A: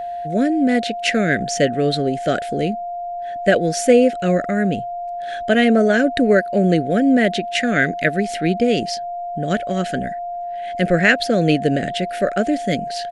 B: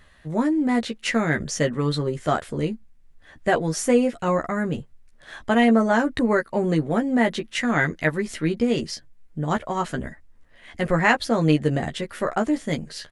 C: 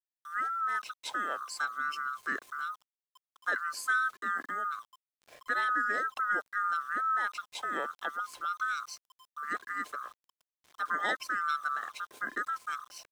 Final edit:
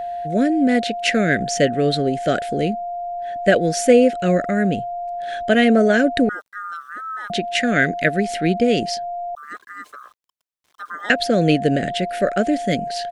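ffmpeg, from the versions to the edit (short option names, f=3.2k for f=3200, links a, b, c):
-filter_complex "[2:a]asplit=2[a][b];[0:a]asplit=3[c][d][e];[c]atrim=end=6.292[f];[a]atrim=start=6.288:end=7.302[g];[d]atrim=start=7.298:end=9.352[h];[b]atrim=start=9.348:end=11.102[i];[e]atrim=start=11.098[j];[f][g]acrossfade=d=0.004:c1=hsin:c2=hsin[k];[k][h]acrossfade=d=0.004:c1=hsin:c2=hsin[l];[l][i]acrossfade=d=0.004:c1=hsin:c2=hsin[m];[m][j]acrossfade=d=0.004:c1=hsin:c2=hsin"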